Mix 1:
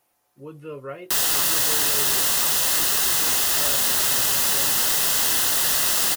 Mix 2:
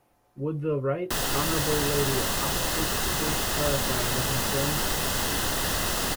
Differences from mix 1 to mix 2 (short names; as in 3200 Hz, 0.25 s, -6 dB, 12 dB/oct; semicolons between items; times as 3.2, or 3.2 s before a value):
speech +4.5 dB; master: add tilt -3 dB/oct